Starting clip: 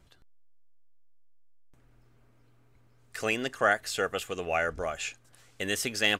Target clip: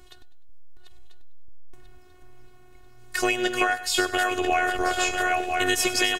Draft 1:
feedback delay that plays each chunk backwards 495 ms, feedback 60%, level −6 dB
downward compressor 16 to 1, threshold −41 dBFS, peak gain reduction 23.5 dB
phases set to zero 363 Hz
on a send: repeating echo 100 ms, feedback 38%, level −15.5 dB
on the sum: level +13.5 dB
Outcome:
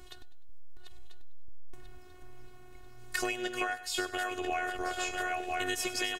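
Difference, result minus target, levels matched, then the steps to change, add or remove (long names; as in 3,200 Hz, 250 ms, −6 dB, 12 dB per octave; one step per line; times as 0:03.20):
downward compressor: peak gain reduction +10.5 dB
change: downward compressor 16 to 1, threshold −30 dBFS, peak gain reduction 13 dB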